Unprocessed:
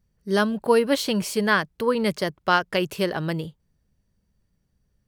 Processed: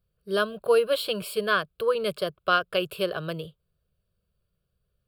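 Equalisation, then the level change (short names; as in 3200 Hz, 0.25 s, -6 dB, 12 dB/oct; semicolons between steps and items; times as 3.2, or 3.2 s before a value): low shelf 100 Hz -8 dB; fixed phaser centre 1300 Hz, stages 8; 0.0 dB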